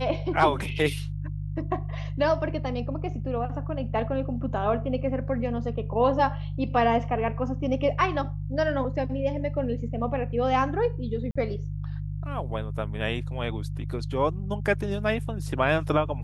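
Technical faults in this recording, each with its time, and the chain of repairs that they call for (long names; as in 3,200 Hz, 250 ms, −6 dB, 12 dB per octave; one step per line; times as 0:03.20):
mains hum 50 Hz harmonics 3 −32 dBFS
0:11.31–0:11.36: drop-out 45 ms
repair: hum removal 50 Hz, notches 3
repair the gap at 0:11.31, 45 ms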